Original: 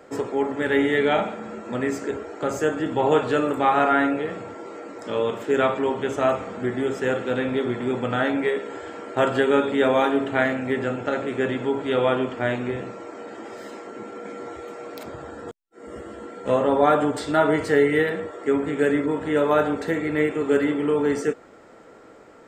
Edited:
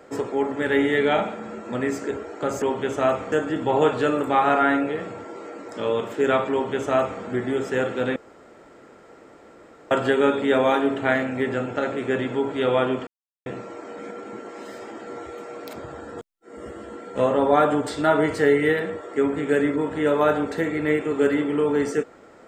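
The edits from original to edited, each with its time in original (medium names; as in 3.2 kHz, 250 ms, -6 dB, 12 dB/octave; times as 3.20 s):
5.82–6.52 s: copy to 2.62 s
7.46–9.21 s: room tone
12.37–12.76 s: mute
13.29–14.37 s: reverse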